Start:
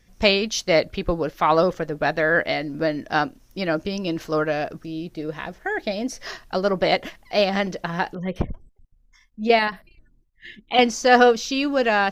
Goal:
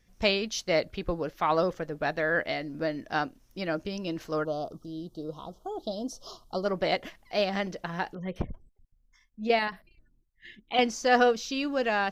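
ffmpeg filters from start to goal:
-filter_complex "[0:a]asplit=3[a][b][c];[a]afade=t=out:st=4.43:d=0.02[d];[b]asuperstop=centerf=2000:order=12:qfactor=1.1,afade=t=in:st=4.43:d=0.02,afade=t=out:st=6.64:d=0.02[e];[c]afade=t=in:st=6.64:d=0.02[f];[d][e][f]amix=inputs=3:normalize=0,volume=-7.5dB"

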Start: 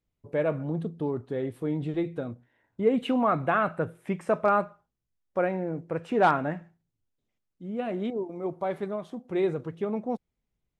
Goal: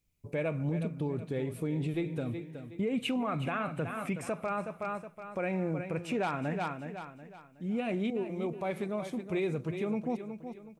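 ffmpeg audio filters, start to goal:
-af "bass=f=250:g=6,treble=f=4k:g=12,aecho=1:1:369|738|1107|1476:0.251|0.0879|0.0308|0.0108,alimiter=limit=-22.5dB:level=0:latency=1:release=180,equalizer=f=2.4k:t=o:w=0.35:g=11.5,volume=-2dB"

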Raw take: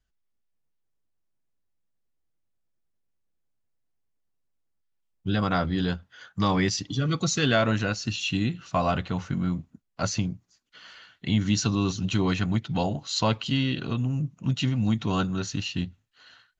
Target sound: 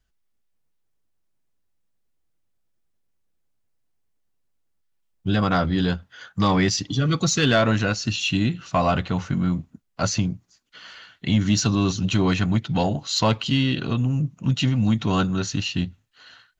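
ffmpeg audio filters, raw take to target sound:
-af "asoftclip=type=tanh:threshold=-13.5dB,volume=5dB"

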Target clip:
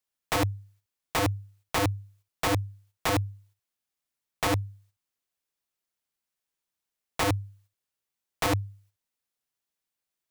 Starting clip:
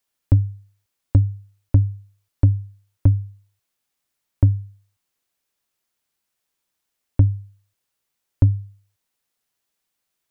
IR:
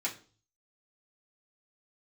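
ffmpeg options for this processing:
-af "aeval=exprs='(mod(10*val(0)+1,2)-1)/10':c=same,agate=range=-9dB:threshold=-59dB:ratio=16:detection=peak"

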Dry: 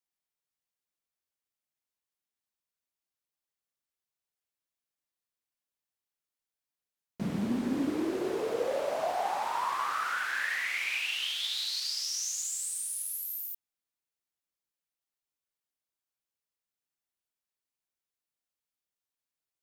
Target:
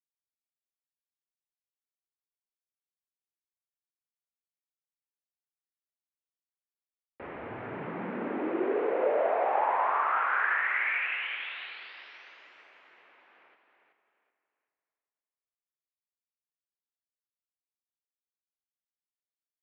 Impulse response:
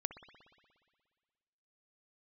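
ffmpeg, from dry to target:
-filter_complex "[0:a]acrusher=bits=7:mix=0:aa=0.5,asplit=5[a][b][c][d][e];[b]adelay=378,afreqshift=44,volume=-7dB[f];[c]adelay=756,afreqshift=88,volume=-17.2dB[g];[d]adelay=1134,afreqshift=132,volume=-27.3dB[h];[e]adelay=1512,afreqshift=176,volume=-37.5dB[i];[a][f][g][h][i]amix=inputs=5:normalize=0,asplit=2[j][k];[1:a]atrim=start_sample=2205,asetrate=29547,aresample=44100[l];[k][l]afir=irnorm=-1:irlink=0,volume=3dB[m];[j][m]amix=inputs=2:normalize=0,highpass=f=490:t=q:w=0.5412,highpass=f=490:t=q:w=1.307,lowpass=f=2.5k:t=q:w=0.5176,lowpass=f=2.5k:t=q:w=0.7071,lowpass=f=2.5k:t=q:w=1.932,afreqshift=-130,volume=-4dB"

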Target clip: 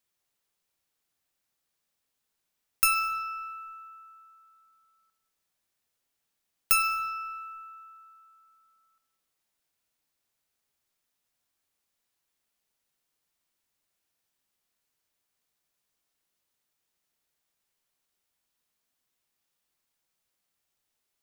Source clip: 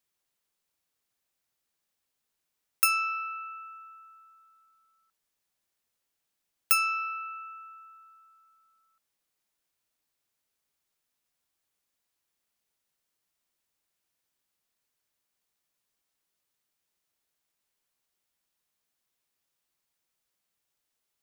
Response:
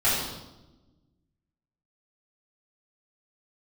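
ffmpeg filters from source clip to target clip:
-filter_complex "[0:a]aeval=exprs='0.376*(cos(1*acos(clip(val(0)/0.376,-1,1)))-cos(1*PI/2))+0.0422*(cos(2*acos(clip(val(0)/0.376,-1,1)))-cos(2*PI/2))+0.00266*(cos(5*acos(clip(val(0)/0.376,-1,1)))-cos(5*PI/2))':c=same,acrusher=bits=9:mode=log:mix=0:aa=0.000001,asplit=2[a][b];[1:a]atrim=start_sample=2205,adelay=18[c];[b][c]afir=irnorm=-1:irlink=0,volume=-21.5dB[d];[a][d]amix=inputs=2:normalize=0"

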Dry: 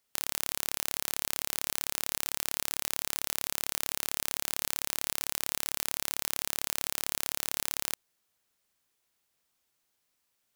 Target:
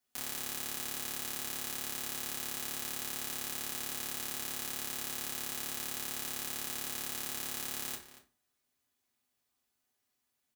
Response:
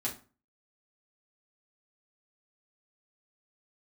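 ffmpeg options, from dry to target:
-filter_complex "[0:a]asplit=2[a][b];[b]adelay=233.2,volume=-13dB,highshelf=f=4k:g=-5.25[c];[a][c]amix=inputs=2:normalize=0[d];[1:a]atrim=start_sample=2205[e];[d][e]afir=irnorm=-1:irlink=0,volume=-6.5dB"

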